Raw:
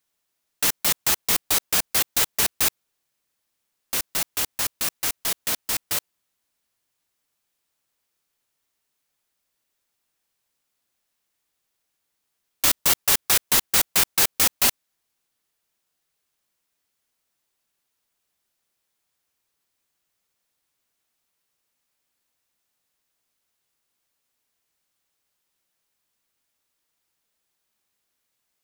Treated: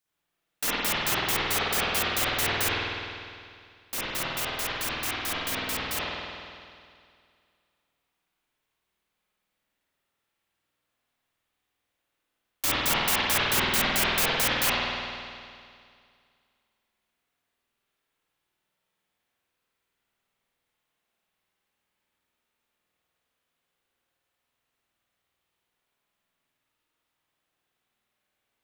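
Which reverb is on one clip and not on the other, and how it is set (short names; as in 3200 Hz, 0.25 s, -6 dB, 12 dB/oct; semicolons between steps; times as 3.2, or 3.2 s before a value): spring tank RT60 2.2 s, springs 50 ms, chirp 50 ms, DRR -10 dB; gain -8 dB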